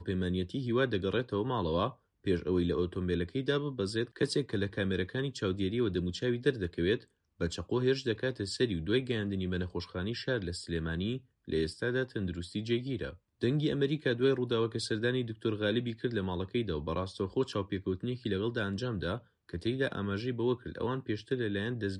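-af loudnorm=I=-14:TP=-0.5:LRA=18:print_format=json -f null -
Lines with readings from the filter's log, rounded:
"input_i" : "-33.3",
"input_tp" : "-15.3",
"input_lra" : "2.6",
"input_thresh" : "-43.3",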